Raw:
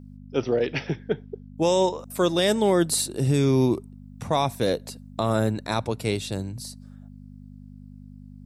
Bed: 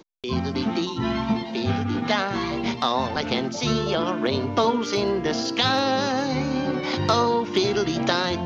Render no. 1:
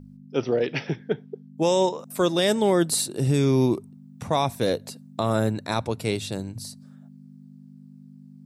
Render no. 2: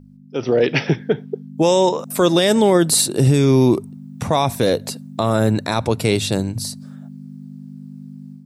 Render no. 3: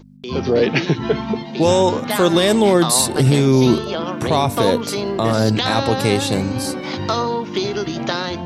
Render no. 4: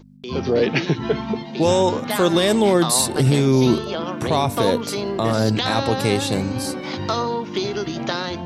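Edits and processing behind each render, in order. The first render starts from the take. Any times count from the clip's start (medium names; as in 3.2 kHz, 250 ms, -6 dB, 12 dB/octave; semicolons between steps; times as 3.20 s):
de-hum 50 Hz, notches 2
peak limiter -16 dBFS, peak gain reduction 6 dB; level rider gain up to 11 dB
add bed 0 dB
trim -2.5 dB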